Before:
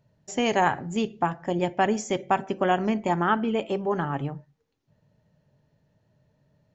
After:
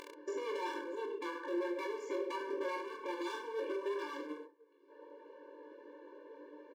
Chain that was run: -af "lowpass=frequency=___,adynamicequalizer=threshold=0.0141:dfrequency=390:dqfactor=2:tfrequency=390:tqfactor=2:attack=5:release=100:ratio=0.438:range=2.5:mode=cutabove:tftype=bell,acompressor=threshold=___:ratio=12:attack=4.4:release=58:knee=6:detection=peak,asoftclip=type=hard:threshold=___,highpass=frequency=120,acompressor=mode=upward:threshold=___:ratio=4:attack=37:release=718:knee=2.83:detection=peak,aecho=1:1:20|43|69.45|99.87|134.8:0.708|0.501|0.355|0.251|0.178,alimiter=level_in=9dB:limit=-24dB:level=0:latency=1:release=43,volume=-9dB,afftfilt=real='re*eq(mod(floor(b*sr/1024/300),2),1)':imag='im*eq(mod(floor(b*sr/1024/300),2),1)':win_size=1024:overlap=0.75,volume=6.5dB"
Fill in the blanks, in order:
1500, -32dB, -38.5dB, -44dB